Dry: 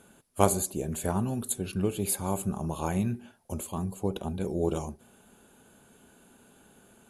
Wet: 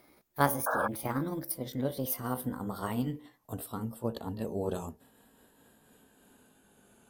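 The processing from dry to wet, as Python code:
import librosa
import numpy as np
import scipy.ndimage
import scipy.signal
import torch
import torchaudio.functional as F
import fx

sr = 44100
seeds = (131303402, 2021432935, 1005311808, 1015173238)

y = fx.pitch_glide(x, sr, semitones=6.5, runs='ending unshifted')
y = fx.spec_paint(y, sr, seeds[0], shape='noise', start_s=0.66, length_s=0.22, low_hz=450.0, high_hz=1700.0, level_db=-27.0)
y = y * librosa.db_to_amplitude(-3.0)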